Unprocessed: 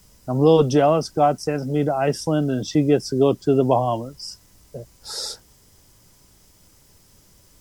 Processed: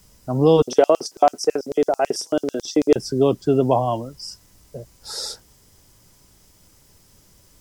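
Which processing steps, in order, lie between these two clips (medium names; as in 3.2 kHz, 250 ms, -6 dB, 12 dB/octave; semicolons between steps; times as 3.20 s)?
0.62–2.96 s: LFO high-pass square 9.1 Hz 400–5700 Hz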